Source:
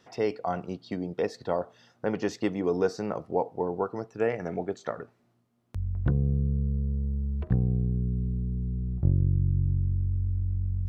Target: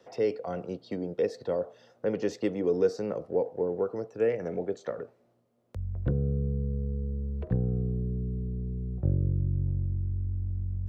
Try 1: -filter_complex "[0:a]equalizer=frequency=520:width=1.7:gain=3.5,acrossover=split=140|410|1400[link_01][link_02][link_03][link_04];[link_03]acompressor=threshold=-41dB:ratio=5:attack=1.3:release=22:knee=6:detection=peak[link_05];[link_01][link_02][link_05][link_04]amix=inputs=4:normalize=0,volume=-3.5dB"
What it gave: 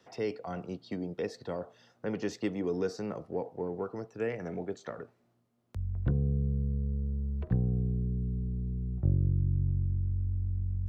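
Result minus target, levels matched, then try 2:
500 Hz band −5.0 dB
-filter_complex "[0:a]equalizer=frequency=520:width=1.7:gain=15,acrossover=split=140|410|1400[link_01][link_02][link_03][link_04];[link_03]acompressor=threshold=-41dB:ratio=5:attack=1.3:release=22:knee=6:detection=peak[link_05];[link_01][link_02][link_05][link_04]amix=inputs=4:normalize=0,volume=-3.5dB"

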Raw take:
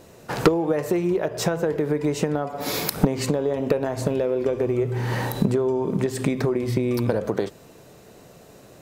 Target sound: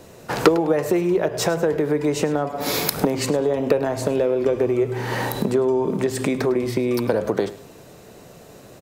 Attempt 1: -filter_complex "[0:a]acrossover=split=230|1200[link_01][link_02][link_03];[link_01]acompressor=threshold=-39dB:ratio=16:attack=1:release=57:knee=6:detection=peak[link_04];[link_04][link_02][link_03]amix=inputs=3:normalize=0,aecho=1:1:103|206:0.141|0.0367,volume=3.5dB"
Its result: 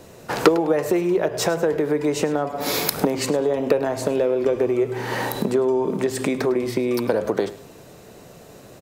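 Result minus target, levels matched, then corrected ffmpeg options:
downward compressor: peak gain reduction +6 dB
-filter_complex "[0:a]acrossover=split=230|1200[link_01][link_02][link_03];[link_01]acompressor=threshold=-32.5dB:ratio=16:attack=1:release=57:knee=6:detection=peak[link_04];[link_04][link_02][link_03]amix=inputs=3:normalize=0,aecho=1:1:103|206:0.141|0.0367,volume=3.5dB"

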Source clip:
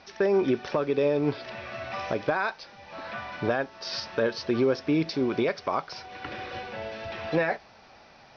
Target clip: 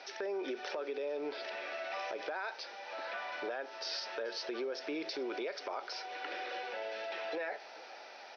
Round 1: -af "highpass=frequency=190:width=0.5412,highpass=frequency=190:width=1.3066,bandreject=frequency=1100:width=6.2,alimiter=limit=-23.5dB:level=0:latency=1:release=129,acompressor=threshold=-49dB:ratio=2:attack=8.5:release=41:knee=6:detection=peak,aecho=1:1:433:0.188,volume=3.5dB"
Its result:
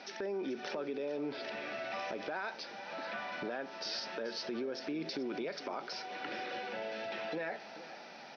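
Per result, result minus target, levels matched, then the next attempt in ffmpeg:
echo-to-direct +6.5 dB; 250 Hz band +4.0 dB
-af "highpass=frequency=190:width=0.5412,highpass=frequency=190:width=1.3066,bandreject=frequency=1100:width=6.2,alimiter=limit=-23.5dB:level=0:latency=1:release=129,acompressor=threshold=-49dB:ratio=2:attack=8.5:release=41:knee=6:detection=peak,aecho=1:1:433:0.0891,volume=3.5dB"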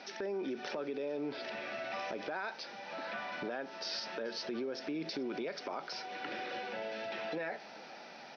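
250 Hz band +4.0 dB
-af "highpass=frequency=380:width=0.5412,highpass=frequency=380:width=1.3066,bandreject=frequency=1100:width=6.2,alimiter=limit=-23.5dB:level=0:latency=1:release=129,acompressor=threshold=-49dB:ratio=2:attack=8.5:release=41:knee=6:detection=peak,aecho=1:1:433:0.0891,volume=3.5dB"

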